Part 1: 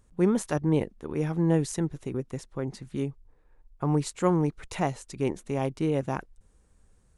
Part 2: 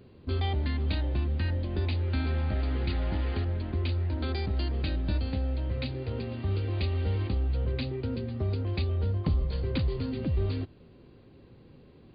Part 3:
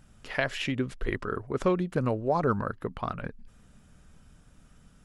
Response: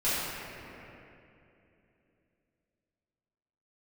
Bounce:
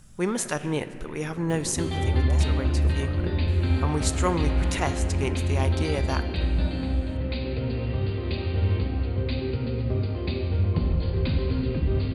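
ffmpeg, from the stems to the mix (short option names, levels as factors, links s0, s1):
-filter_complex "[0:a]tiltshelf=f=900:g=-7,volume=1.19,asplit=3[s0][s1][s2];[s1]volume=0.0668[s3];[1:a]acompressor=mode=upward:threshold=0.0355:ratio=2.5,adelay=1500,volume=0.841,asplit=2[s4][s5];[s5]volume=0.376[s6];[2:a]acrossover=split=2500[s7][s8];[s8]acompressor=threshold=0.00398:ratio=4:attack=1:release=60[s9];[s7][s9]amix=inputs=2:normalize=0,bass=f=250:g=6,treble=f=4000:g=11,acompressor=threshold=0.0355:ratio=6,volume=0.891,asplit=2[s10][s11];[s11]volume=0.0668[s12];[s2]apad=whole_len=222531[s13];[s10][s13]sidechaincompress=threshold=0.00794:ratio=8:attack=16:release=177[s14];[3:a]atrim=start_sample=2205[s15];[s3][s6][s12]amix=inputs=3:normalize=0[s16];[s16][s15]afir=irnorm=-1:irlink=0[s17];[s0][s4][s14][s17]amix=inputs=4:normalize=0"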